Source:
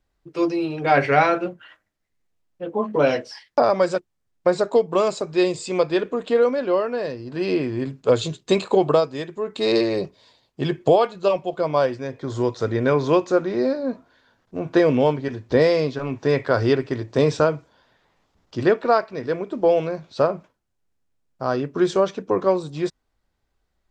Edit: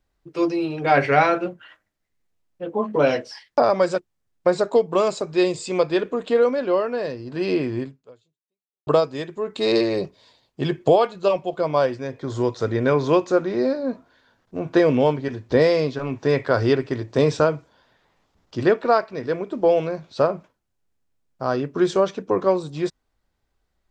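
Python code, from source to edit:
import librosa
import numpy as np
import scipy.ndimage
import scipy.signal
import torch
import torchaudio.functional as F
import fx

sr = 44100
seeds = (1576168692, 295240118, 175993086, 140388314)

y = fx.edit(x, sr, fx.fade_out_span(start_s=7.79, length_s=1.08, curve='exp'), tone=tone)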